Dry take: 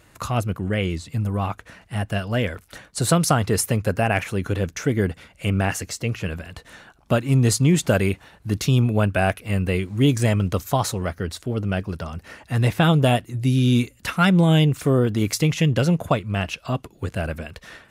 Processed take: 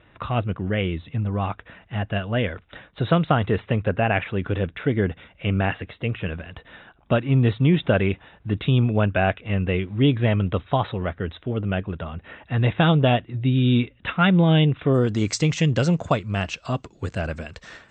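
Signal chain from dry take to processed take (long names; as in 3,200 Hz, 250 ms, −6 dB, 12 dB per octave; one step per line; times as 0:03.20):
Chebyshev low-pass filter 3,800 Hz, order 10, from 0:14.93 8,200 Hz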